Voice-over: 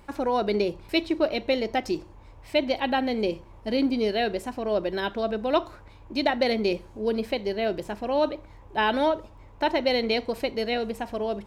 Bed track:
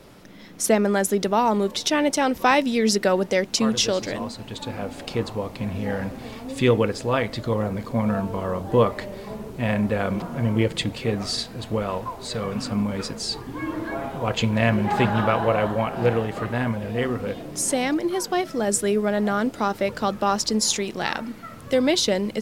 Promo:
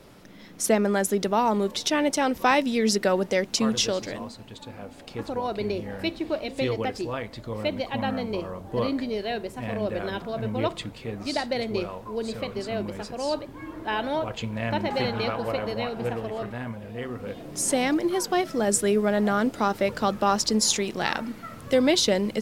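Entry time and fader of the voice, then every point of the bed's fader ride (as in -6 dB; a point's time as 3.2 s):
5.10 s, -4.5 dB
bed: 3.79 s -2.5 dB
4.67 s -9.5 dB
17.03 s -9.5 dB
17.74 s -0.5 dB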